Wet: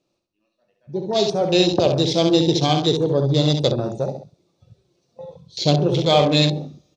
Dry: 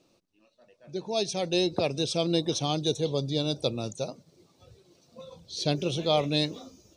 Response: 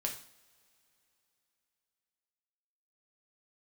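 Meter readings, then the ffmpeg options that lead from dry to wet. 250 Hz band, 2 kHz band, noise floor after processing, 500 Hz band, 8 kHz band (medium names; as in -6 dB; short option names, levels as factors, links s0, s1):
+10.0 dB, +8.0 dB, -74 dBFS, +9.5 dB, +4.0 dB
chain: -filter_complex "[0:a]aecho=1:1:67|134|201|268:0.501|0.18|0.065|0.0234,asplit=2[s0][s1];[1:a]atrim=start_sample=2205,lowpass=8900[s2];[s1][s2]afir=irnorm=-1:irlink=0,volume=0.631[s3];[s0][s3]amix=inputs=2:normalize=0,afwtdn=0.0251,volume=1.68"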